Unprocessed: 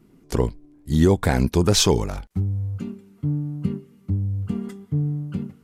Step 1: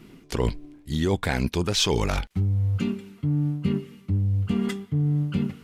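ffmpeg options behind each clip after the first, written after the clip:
-af "equalizer=f=2.9k:t=o:w=1.8:g=10,areverse,acompressor=threshold=-27dB:ratio=8,areverse,volume=6.5dB"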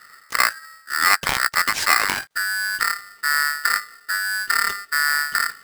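-af "equalizer=f=410:w=0.5:g=8.5,aeval=exprs='0.631*(cos(1*acos(clip(val(0)/0.631,-1,1)))-cos(1*PI/2))+0.2*(cos(2*acos(clip(val(0)/0.631,-1,1)))-cos(2*PI/2))+0.0316*(cos(7*acos(clip(val(0)/0.631,-1,1)))-cos(7*PI/2))':c=same,aeval=exprs='val(0)*sgn(sin(2*PI*1600*n/s))':c=same,volume=-1dB"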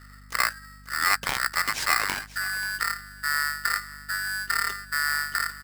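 -af "aeval=exprs='val(0)+0.00794*(sin(2*PI*50*n/s)+sin(2*PI*2*50*n/s)/2+sin(2*PI*3*50*n/s)/3+sin(2*PI*4*50*n/s)/4+sin(2*PI*5*50*n/s)/5)':c=same,aecho=1:1:534:0.133,volume=-6dB"

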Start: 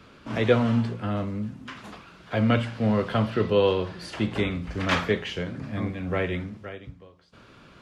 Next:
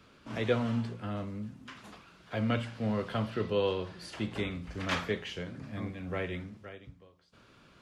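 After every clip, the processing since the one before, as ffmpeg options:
-af "highshelf=f=4.6k:g=5.5,volume=-8.5dB"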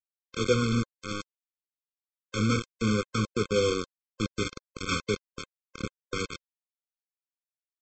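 -af "aresample=16000,acrusher=bits=4:mix=0:aa=0.000001,aresample=44100,afftfilt=real='re*eq(mod(floor(b*sr/1024/520),2),0)':imag='im*eq(mod(floor(b*sr/1024/520),2),0)':win_size=1024:overlap=0.75,volume=4dB"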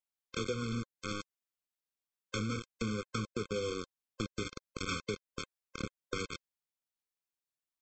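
-af "acompressor=threshold=-33dB:ratio=6"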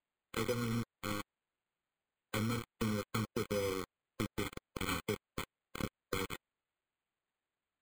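-af "acrusher=samples=8:mix=1:aa=0.000001"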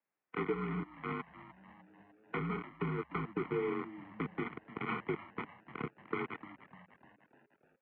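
-filter_complex "[0:a]asplit=7[a][b][c][d][e][f][g];[b]adelay=300,afreqshift=-120,volume=-14dB[h];[c]adelay=600,afreqshift=-240,volume=-18.9dB[i];[d]adelay=900,afreqshift=-360,volume=-23.8dB[j];[e]adelay=1200,afreqshift=-480,volume=-28.6dB[k];[f]adelay=1500,afreqshift=-600,volume=-33.5dB[l];[g]adelay=1800,afreqshift=-720,volume=-38.4dB[m];[a][h][i][j][k][l][m]amix=inputs=7:normalize=0,highpass=f=210:t=q:w=0.5412,highpass=f=210:t=q:w=1.307,lowpass=f=2.5k:t=q:w=0.5176,lowpass=f=2.5k:t=q:w=0.7071,lowpass=f=2.5k:t=q:w=1.932,afreqshift=-56,volume=2dB"

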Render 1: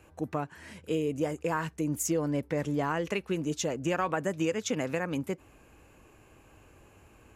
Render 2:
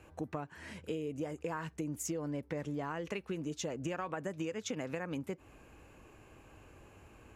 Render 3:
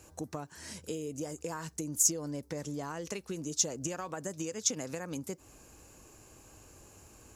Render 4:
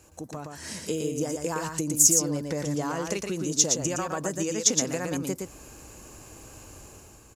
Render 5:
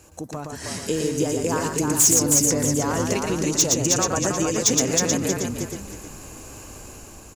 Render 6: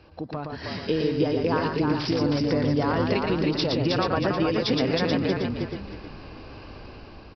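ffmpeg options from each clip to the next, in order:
-af "highshelf=f=8.1k:g=-7,acompressor=threshold=-36dB:ratio=4"
-af "highshelf=f=3.8k:t=q:w=1.5:g=13"
-filter_complex "[0:a]dynaudnorm=f=120:g=9:m=8dB,asplit=2[a][b];[b]aecho=0:1:116:0.596[c];[a][c]amix=inputs=2:normalize=0"
-filter_complex "[0:a]asplit=5[a][b][c][d][e];[b]adelay=315,afreqshift=-38,volume=-4dB[f];[c]adelay=630,afreqshift=-76,volume=-13.9dB[g];[d]adelay=945,afreqshift=-114,volume=-23.8dB[h];[e]adelay=1260,afreqshift=-152,volume=-33.7dB[i];[a][f][g][h][i]amix=inputs=5:normalize=0,asoftclip=type=hard:threshold=-17dB,volume=5dB"
-af "aresample=11025,aresample=44100"

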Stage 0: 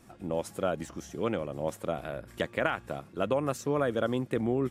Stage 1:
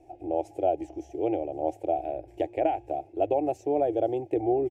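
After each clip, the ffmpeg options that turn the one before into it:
-af "firequalizer=gain_entry='entry(100,0);entry(210,-30);entry(310,9);entry(510,0);entry(770,13);entry(1100,-29);entry(2400,-5);entry(3700,-17);entry(6000,-12);entry(9900,-18)':delay=0.05:min_phase=1"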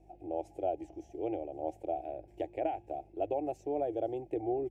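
-af "aeval=exprs='val(0)+0.002*(sin(2*PI*50*n/s)+sin(2*PI*2*50*n/s)/2+sin(2*PI*3*50*n/s)/3+sin(2*PI*4*50*n/s)/4+sin(2*PI*5*50*n/s)/5)':c=same,volume=-8dB"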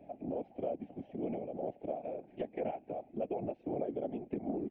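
-af "highpass=f=210:t=q:w=0.5412,highpass=f=210:t=q:w=1.307,lowpass=f=3.4k:t=q:w=0.5176,lowpass=f=3.4k:t=q:w=0.7071,lowpass=f=3.4k:t=q:w=1.932,afreqshift=-71,afftfilt=real='hypot(re,im)*cos(2*PI*random(0))':imag='hypot(re,im)*sin(2*PI*random(1))':win_size=512:overlap=0.75,acompressor=threshold=-58dB:ratio=2,volume=14.5dB"

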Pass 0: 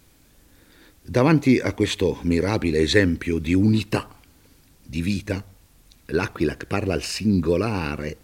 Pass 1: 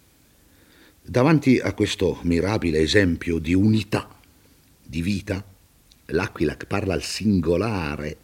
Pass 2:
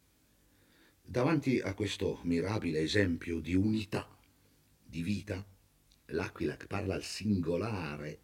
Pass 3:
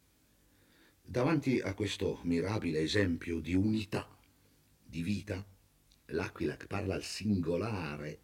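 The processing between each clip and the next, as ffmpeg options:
-af "highpass=50"
-af "flanger=delay=19:depth=2.8:speed=0.39,volume=-9dB"
-af "asoftclip=type=tanh:threshold=-17dB"

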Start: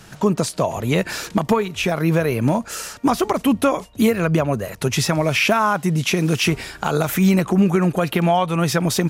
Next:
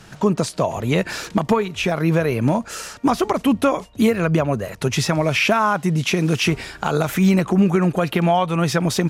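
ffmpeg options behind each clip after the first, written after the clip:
-af "highshelf=f=11k:g=-10.5"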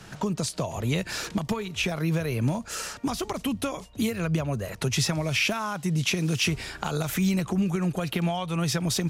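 -filter_complex "[0:a]acrossover=split=140|3000[a][b][c];[b]acompressor=threshold=-28dB:ratio=4[d];[a][d][c]amix=inputs=3:normalize=0,volume=-1.5dB"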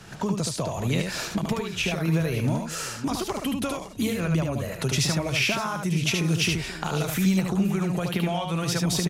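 -af "aecho=1:1:74|562:0.631|0.178"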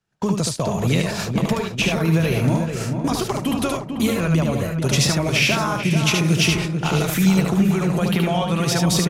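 -filter_complex "[0:a]agate=range=-39dB:threshold=-30dB:ratio=16:detection=peak,asplit=2[a][b];[b]adelay=440,lowpass=f=1.7k:p=1,volume=-6dB,asplit=2[c][d];[d]adelay=440,lowpass=f=1.7k:p=1,volume=0.52,asplit=2[e][f];[f]adelay=440,lowpass=f=1.7k:p=1,volume=0.52,asplit=2[g][h];[h]adelay=440,lowpass=f=1.7k:p=1,volume=0.52,asplit=2[i][j];[j]adelay=440,lowpass=f=1.7k:p=1,volume=0.52,asplit=2[k][l];[l]adelay=440,lowpass=f=1.7k:p=1,volume=0.52[m];[a][c][e][g][i][k][m]amix=inputs=7:normalize=0,volume=5.5dB"

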